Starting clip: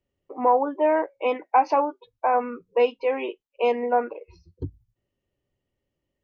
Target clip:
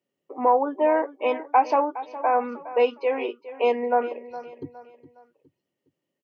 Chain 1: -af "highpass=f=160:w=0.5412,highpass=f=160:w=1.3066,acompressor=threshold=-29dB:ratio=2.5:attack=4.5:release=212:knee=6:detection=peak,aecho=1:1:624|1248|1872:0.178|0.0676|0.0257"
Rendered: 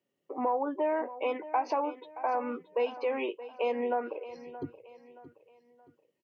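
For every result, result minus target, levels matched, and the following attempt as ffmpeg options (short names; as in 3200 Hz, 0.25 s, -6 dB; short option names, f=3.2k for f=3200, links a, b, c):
compressor: peak gain reduction +11.5 dB; echo 0.211 s late
-af "highpass=f=160:w=0.5412,highpass=f=160:w=1.3066,aecho=1:1:624|1248|1872:0.178|0.0676|0.0257"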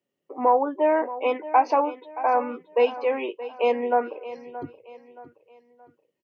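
echo 0.211 s late
-af "highpass=f=160:w=0.5412,highpass=f=160:w=1.3066,aecho=1:1:413|826|1239:0.178|0.0676|0.0257"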